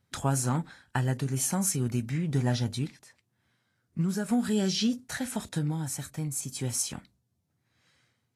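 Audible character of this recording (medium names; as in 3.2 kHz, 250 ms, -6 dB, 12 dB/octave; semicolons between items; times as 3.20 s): random-step tremolo 1.4 Hz; Vorbis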